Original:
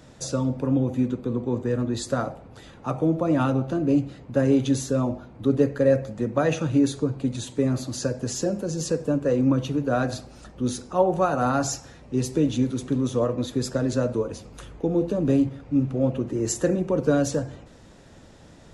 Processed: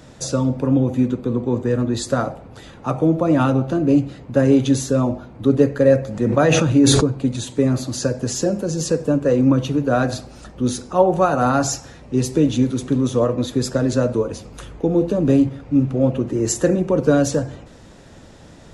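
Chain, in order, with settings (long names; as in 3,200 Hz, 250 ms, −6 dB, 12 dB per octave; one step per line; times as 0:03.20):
0:06.07–0:07.04: level that may fall only so fast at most 20 dB per second
level +5.5 dB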